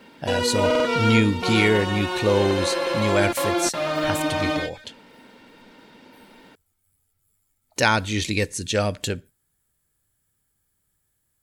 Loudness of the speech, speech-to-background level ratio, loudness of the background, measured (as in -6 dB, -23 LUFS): -24.0 LUFS, 0.5 dB, -24.5 LUFS